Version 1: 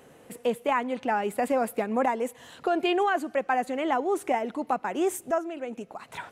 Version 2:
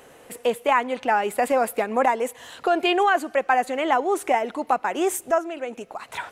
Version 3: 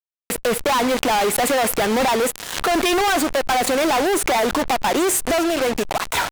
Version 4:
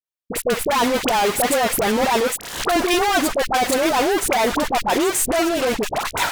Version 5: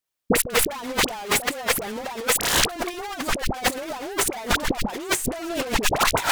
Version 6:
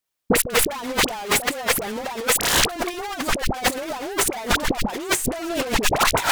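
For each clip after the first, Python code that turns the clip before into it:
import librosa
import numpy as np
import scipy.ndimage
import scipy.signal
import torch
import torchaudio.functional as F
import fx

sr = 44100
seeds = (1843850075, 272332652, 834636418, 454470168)

y1 = fx.peak_eq(x, sr, hz=170.0, db=-9.5, octaves=2.1)
y1 = y1 * 10.0 ** (7.0 / 20.0)
y2 = fx.fuzz(y1, sr, gain_db=46.0, gate_db=-37.0)
y2 = fx.pre_swell(y2, sr, db_per_s=73.0)
y2 = y2 * 10.0 ** (-3.5 / 20.0)
y3 = fx.dispersion(y2, sr, late='highs', ms=55.0, hz=970.0)
y4 = fx.over_compress(y3, sr, threshold_db=-26.0, ratio=-0.5)
y4 = y4 * 10.0 ** (2.5 / 20.0)
y5 = 10.0 ** (-9.0 / 20.0) * np.tanh(y4 / 10.0 ** (-9.0 / 20.0))
y5 = y5 * 10.0 ** (2.5 / 20.0)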